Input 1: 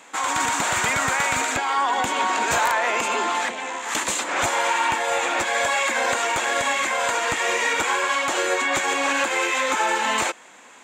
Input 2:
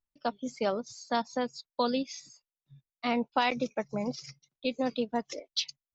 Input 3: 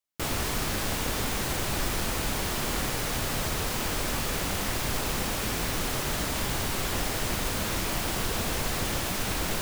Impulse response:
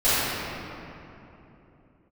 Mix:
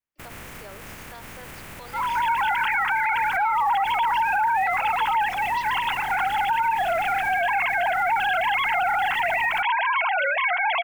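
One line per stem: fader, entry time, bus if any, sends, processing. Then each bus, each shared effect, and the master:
-3.0 dB, 1.80 s, no bus, no send, formants replaced by sine waves; level rider gain up to 11.5 dB; comb of notches 600 Hz
-11.5 dB, 0.00 s, bus A, no send, steep high-pass 310 Hz 96 dB/octave; peaking EQ 1.7 kHz +9.5 dB 1.4 oct
-1.5 dB, 0.00 s, bus A, no send, spectral contrast reduction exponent 0.32; resonant high shelf 3.1 kHz -10.5 dB, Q 1.5; peak limiter -29.5 dBFS, peak gain reduction 11 dB
bus A: 0.0 dB, peak limiter -32.5 dBFS, peak gain reduction 11 dB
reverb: none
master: tone controls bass +7 dB, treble +3 dB; peak limiter -15.5 dBFS, peak gain reduction 10.5 dB

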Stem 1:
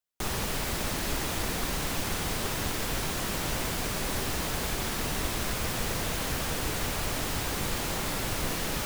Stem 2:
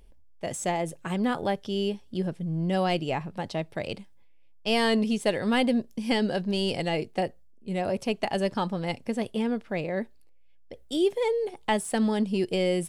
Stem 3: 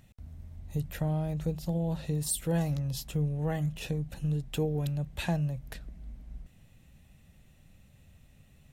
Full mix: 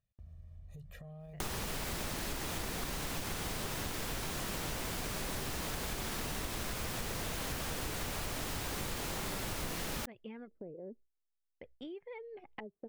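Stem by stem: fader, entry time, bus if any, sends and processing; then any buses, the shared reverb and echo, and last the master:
0.0 dB, 1.20 s, no bus, no send, none
-8.5 dB, 0.90 s, bus A, no send, reverb removal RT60 0.75 s; LFO low-pass square 0.47 Hz 430–2200 Hz; auto duck -22 dB, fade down 1.50 s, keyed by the third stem
-10.5 dB, 0.00 s, bus A, no send, comb 1.7 ms, depth 99%; peak limiter -26 dBFS, peak gain reduction 11.5 dB; compression, threshold -35 dBFS, peak gain reduction 6.5 dB
bus A: 0.0 dB, peaking EQ 13 kHz -8 dB 1.6 oct; compression 8:1, threshold -44 dBFS, peak gain reduction 18 dB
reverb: none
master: gate with hold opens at -49 dBFS; compression 6:1, threshold -35 dBFS, peak gain reduction 10 dB

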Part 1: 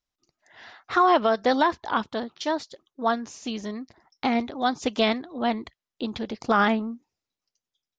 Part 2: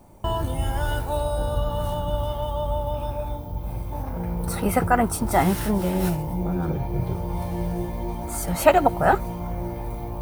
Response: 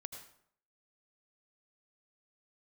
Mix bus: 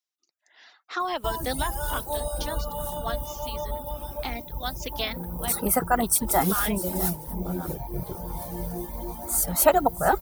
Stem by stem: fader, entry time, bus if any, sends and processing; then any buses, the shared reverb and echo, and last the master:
-11.0 dB, 0.00 s, no send, no echo send, high-pass 250 Hz 24 dB/octave; treble shelf 2.1 kHz +12 dB
-2.5 dB, 1.00 s, no send, echo send -14 dB, fifteen-band graphic EQ 100 Hz -12 dB, 2.5 kHz -8 dB, 16 kHz +5 dB; treble shelf 4.9 kHz +11.5 dB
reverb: none
echo: delay 648 ms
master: reverb removal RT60 0.86 s

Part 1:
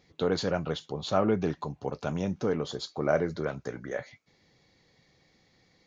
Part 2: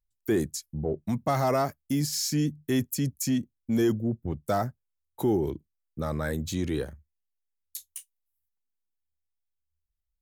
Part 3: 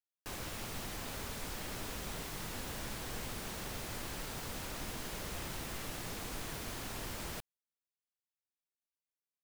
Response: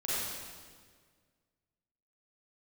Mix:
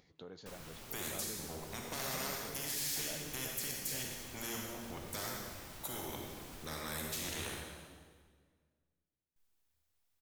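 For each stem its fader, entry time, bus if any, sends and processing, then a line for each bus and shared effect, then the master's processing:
-15.5 dB, 0.00 s, no bus, send -22 dB, compression 2:1, threshold -39 dBFS, peak gain reduction 11 dB; upward compressor, threshold -45 dBFS
-5.5 dB, 0.65 s, muted 8.22–9.36 s, bus A, send -7.5 dB, spectrum-flattening compressor 4:1
-8.0 dB, 0.20 s, bus A, no send, modulation noise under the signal 10 dB
bus A: 0.0 dB, compression 2:1, threshold -48 dBFS, peak gain reduction 8.5 dB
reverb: on, RT60 1.7 s, pre-delay 34 ms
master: none

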